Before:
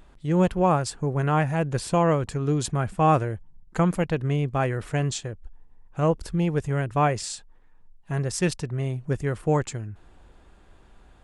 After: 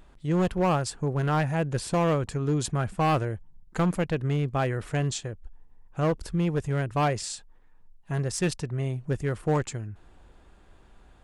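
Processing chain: hard clip -17.5 dBFS, distortion -14 dB; gain -1.5 dB

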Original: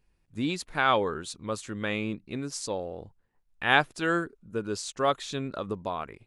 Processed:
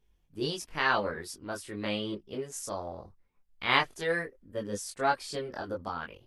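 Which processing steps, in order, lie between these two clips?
formant shift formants +4 st; chorus voices 6, 0.39 Hz, delay 22 ms, depth 2.9 ms

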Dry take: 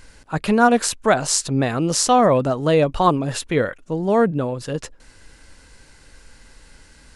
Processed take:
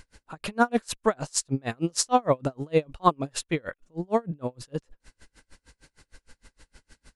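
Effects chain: dB-linear tremolo 6.5 Hz, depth 36 dB; gain -2 dB

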